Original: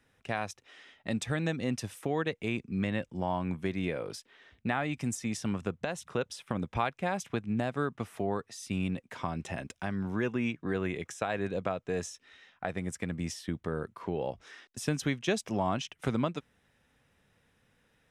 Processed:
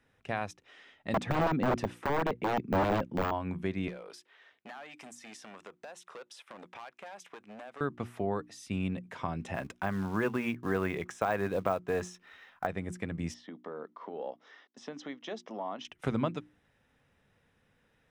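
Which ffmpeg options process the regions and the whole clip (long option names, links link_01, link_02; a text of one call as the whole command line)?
ffmpeg -i in.wav -filter_complex "[0:a]asettb=1/sr,asplit=3[link_01][link_02][link_03];[link_01]atrim=end=1.144[link_04];[link_02]atrim=start=1.14:end=3.31,asetpts=PTS-STARTPTS,afade=type=in:duration=0.004:curve=qsin,afade=type=out:start_time=2.166:duration=0.004:curve=qsin,equalizer=frequency=220:width=0.51:gain=11.5,aeval=exprs='(mod(7.94*val(0)+1,2)-1)/7.94':channel_layout=same,asplit=2[link_05][link_06];[link_06]highpass=frequency=720:poles=1,volume=9dB,asoftclip=type=tanh:threshold=-17.5dB[link_07];[link_05][link_07]amix=inputs=2:normalize=0,lowpass=frequency=2200:poles=1,volume=-6dB[link_08];[link_03]atrim=start=3.306[link_09];[link_04][link_08]acrossfade=duration=0.004:curve1=hsin:curve2=qsin[link_10];[link_10][link_09]acrossfade=duration=0.004:curve1=qsin:curve2=hsin,asettb=1/sr,asplit=3[link_11][link_12][link_13];[link_11]atrim=end=3.884[link_14];[link_12]atrim=start=3.88:end=7.81,asetpts=PTS-STARTPTS,afade=type=in:duration=0.004:curve=qsin,afade=type=out:start_time=3.926:duration=0.004:curve=qsin,volume=28.5dB,asoftclip=hard,volume=-28.5dB,highpass=550,acompressor=threshold=-42dB:ratio=4:attack=3.2:release=140:knee=1:detection=peak[link_15];[link_13]atrim=start=7.806[link_16];[link_14][link_15]acrossfade=duration=0.004:curve1=hsin:curve2=qsin[link_17];[link_17][link_16]acrossfade=duration=0.004:curve1=qsin:curve2=hsin,asettb=1/sr,asplit=3[link_18][link_19][link_20];[link_18]atrim=end=9.544[link_21];[link_19]atrim=start=9.54:end=12.67,asetpts=PTS-STARTPTS,afade=type=in:duration=0.004:curve=qsin,afade=type=out:start_time=3.126:duration=0.004:curve=qsin,equalizer=frequency=1100:width=0.82:gain=7.5,acrusher=bits=5:mode=log:mix=0:aa=0.000001[link_22];[link_20]atrim=start=12.666[link_23];[link_21][link_22]acrossfade=duration=0.004:curve1=hsin:curve2=qsin[link_24];[link_24][link_23]acrossfade=duration=0.004:curve1=qsin:curve2=hsin,asettb=1/sr,asplit=3[link_25][link_26][link_27];[link_25]atrim=end=13.344[link_28];[link_26]atrim=start=13.34:end=15.85,asetpts=PTS-STARTPTS,afade=type=in:duration=0.004:curve=qsin,afade=type=out:start_time=2.506:duration=0.004:curve=qsin,acompressor=threshold=-31dB:ratio=2.5:attack=3.2:release=140:knee=1:detection=peak,highpass=frequency=260:width=0.5412,highpass=frequency=260:width=1.3066,equalizer=frequency=360:width_type=q:width=4:gain=-8,equalizer=frequency=1500:width_type=q:width=4:gain=-4,equalizer=frequency=2500:width_type=q:width=4:gain=-10,equalizer=frequency=4400:width_type=q:width=4:gain=-6,lowpass=frequency=5100:width=0.5412,lowpass=frequency=5100:width=1.3066,bandreject=frequency=1600:width=18[link_29];[link_27]atrim=start=15.846[link_30];[link_28][link_29]acrossfade=duration=0.004:curve1=hsin:curve2=qsin[link_31];[link_31][link_30]acrossfade=duration=0.004:curve1=qsin:curve2=hsin,deesser=0.8,highshelf=frequency=4100:gain=-7.5,bandreject=frequency=60:width_type=h:width=6,bandreject=frequency=120:width_type=h:width=6,bandreject=frequency=180:width_type=h:width=6,bandreject=frequency=240:width_type=h:width=6,bandreject=frequency=300:width_type=h:width=6,bandreject=frequency=360:width_type=h:width=6" out.wav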